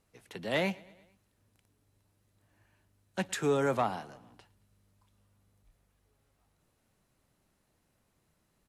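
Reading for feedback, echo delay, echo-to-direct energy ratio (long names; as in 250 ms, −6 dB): 59%, 112 ms, −21.5 dB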